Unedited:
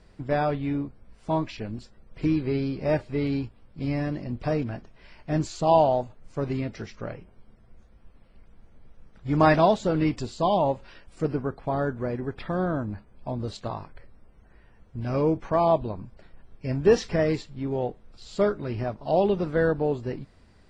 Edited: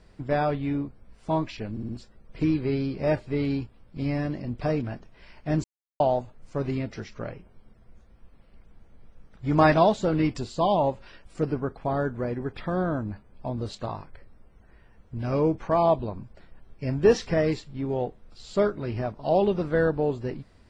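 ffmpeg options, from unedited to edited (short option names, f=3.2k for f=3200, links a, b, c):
-filter_complex "[0:a]asplit=6[a][b][c][d][e][f];[a]atrim=end=1.772[g];[b]atrim=start=1.708:end=1.772[h];[c]atrim=start=1.708:end=1.772[i];[d]atrim=start=1.708:end=5.46,asetpts=PTS-STARTPTS,afade=t=out:st=3.748:d=0.004:c=hsin[j];[e]atrim=start=5.46:end=5.82,asetpts=PTS-STARTPTS,volume=0[k];[f]atrim=start=5.82,asetpts=PTS-STARTPTS,afade=t=in:d=0.004:c=hsin[l];[g][h]acrossfade=d=0.004:c1=hsin:c2=hsin[m];[m][i]acrossfade=d=0.004:c1=hsin:c2=hsin[n];[j][k][l]concat=n=3:v=0:a=1[o];[n][o]acrossfade=d=0.004:c1=hsin:c2=hsin"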